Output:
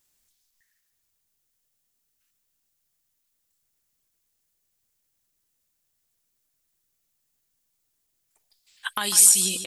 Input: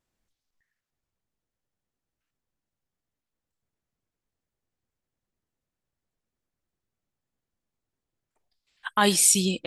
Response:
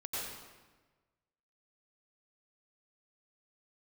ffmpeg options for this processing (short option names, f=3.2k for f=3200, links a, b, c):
-filter_complex "[0:a]acompressor=threshold=-28dB:ratio=12,crystalizer=i=7.5:c=0,asplit=2[a][b];[b]aecho=0:1:148|296|444|592:0.299|0.107|0.0387|0.0139[c];[a][c]amix=inputs=2:normalize=0,volume=-2dB"